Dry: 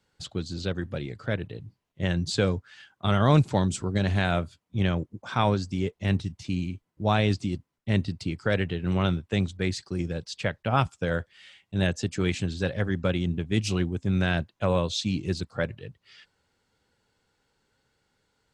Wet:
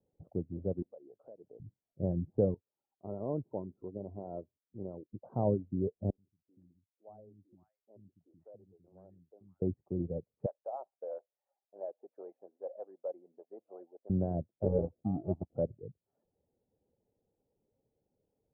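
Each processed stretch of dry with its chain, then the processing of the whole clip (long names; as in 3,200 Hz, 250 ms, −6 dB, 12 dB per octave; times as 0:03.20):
0:00.82–0:01.60: high-pass filter 530 Hz + downward compressor 4 to 1, threshold −43 dBFS
0:02.54–0:05.13: Chebyshev low-pass with heavy ripple 1,400 Hz, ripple 6 dB + low-shelf EQ 390 Hz −11.5 dB
0:06.10–0:09.62: first-order pre-emphasis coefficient 0.97 + three-band delay without the direct sound mids, lows, highs 80/510 ms, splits 300/1,400 Hz
0:10.46–0:14.10: high-pass filter 600 Hz 24 dB per octave + saturating transformer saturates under 2,600 Hz
0:14.63–0:15.56: low-pass filter 1,300 Hz 24 dB per octave + sample-rate reduction 1,000 Hz
whole clip: reverb reduction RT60 0.5 s; Butterworth low-pass 660 Hz 36 dB per octave; spectral tilt +2 dB per octave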